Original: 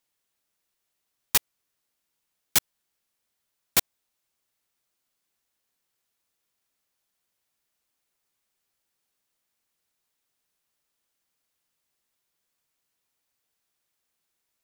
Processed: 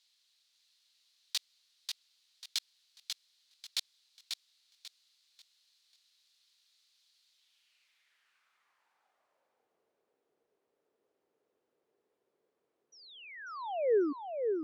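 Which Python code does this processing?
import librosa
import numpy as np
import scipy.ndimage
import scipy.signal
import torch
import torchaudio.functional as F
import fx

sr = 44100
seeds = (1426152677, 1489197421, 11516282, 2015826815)

y = fx.over_compress(x, sr, threshold_db=-28.0, ratio=-1.0)
y = fx.spec_paint(y, sr, seeds[0], shape='fall', start_s=12.92, length_s=1.21, low_hz=270.0, high_hz=6000.0, level_db=-32.0)
y = fx.filter_sweep_bandpass(y, sr, from_hz=4100.0, to_hz=430.0, start_s=7.29, end_s=9.71, q=3.4)
y = fx.echo_feedback(y, sr, ms=541, feedback_pct=29, wet_db=-5.0)
y = y * librosa.db_to_amplitude(7.5)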